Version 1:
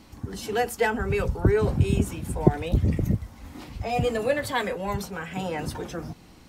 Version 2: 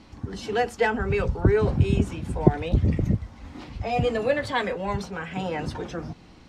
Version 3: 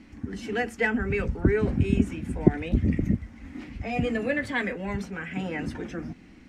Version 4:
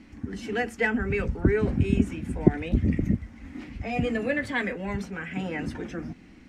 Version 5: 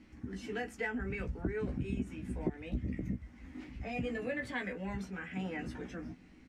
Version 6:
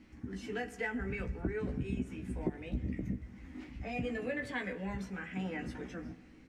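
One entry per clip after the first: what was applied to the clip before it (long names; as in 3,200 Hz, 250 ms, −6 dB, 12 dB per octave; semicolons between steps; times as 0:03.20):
low-pass filter 5,300 Hz 12 dB per octave; level +1 dB
graphic EQ with 10 bands 125 Hz −5 dB, 250 Hz +8 dB, 500 Hz −4 dB, 1,000 Hz −8 dB, 2,000 Hz +8 dB, 4,000 Hz −8 dB; level −2 dB
no processing that can be heard
downward compressor 2.5 to 1, threshold −26 dBFS, peak gain reduction 11 dB; double-tracking delay 16 ms −5 dB; level −9 dB
convolution reverb RT60 1.9 s, pre-delay 23 ms, DRR 15 dB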